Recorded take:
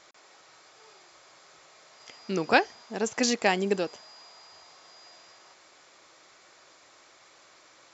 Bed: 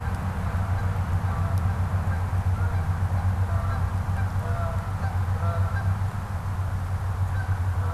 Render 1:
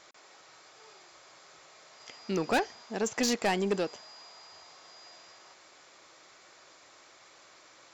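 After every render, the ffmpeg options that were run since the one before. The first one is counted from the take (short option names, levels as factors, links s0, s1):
-af "asoftclip=type=tanh:threshold=0.0891"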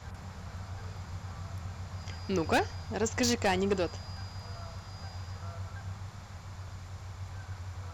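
-filter_complex "[1:a]volume=0.158[s0];[0:a][s0]amix=inputs=2:normalize=0"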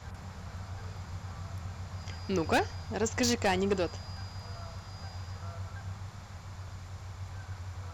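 -af anull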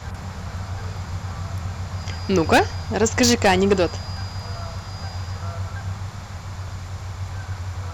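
-af "volume=3.76"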